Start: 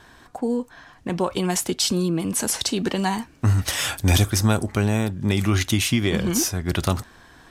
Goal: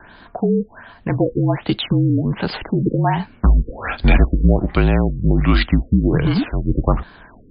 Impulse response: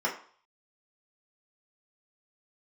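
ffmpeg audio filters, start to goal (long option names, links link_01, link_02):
-af "afreqshift=-45,afftfilt=real='re*lt(b*sr/1024,500*pow(5100/500,0.5+0.5*sin(2*PI*1.3*pts/sr)))':imag='im*lt(b*sr/1024,500*pow(5100/500,0.5+0.5*sin(2*PI*1.3*pts/sr)))':win_size=1024:overlap=0.75,volume=6.5dB"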